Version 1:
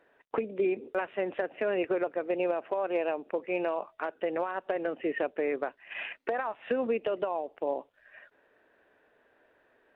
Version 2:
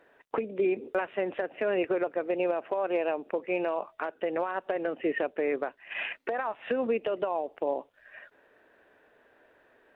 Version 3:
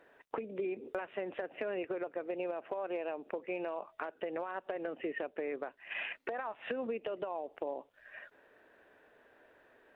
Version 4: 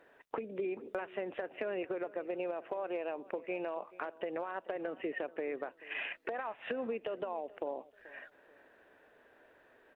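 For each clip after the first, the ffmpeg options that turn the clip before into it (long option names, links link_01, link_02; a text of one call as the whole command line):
ffmpeg -i in.wav -af "alimiter=limit=-22.5dB:level=0:latency=1:release=403,volume=4dB" out.wav
ffmpeg -i in.wav -af "acompressor=threshold=-35dB:ratio=3,volume=-1.5dB" out.wav
ffmpeg -i in.wav -filter_complex "[0:a]asplit=2[link_01][link_02];[link_02]adelay=433,lowpass=frequency=2600:poles=1,volume=-19.5dB,asplit=2[link_03][link_04];[link_04]adelay=433,lowpass=frequency=2600:poles=1,volume=0.33,asplit=2[link_05][link_06];[link_06]adelay=433,lowpass=frequency=2600:poles=1,volume=0.33[link_07];[link_01][link_03][link_05][link_07]amix=inputs=4:normalize=0" out.wav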